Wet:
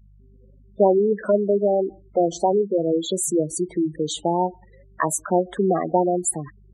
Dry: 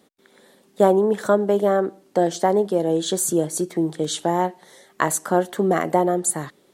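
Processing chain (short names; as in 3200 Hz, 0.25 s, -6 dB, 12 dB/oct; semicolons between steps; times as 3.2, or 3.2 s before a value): hum 50 Hz, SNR 29 dB; spectral gate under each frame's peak -10 dB strong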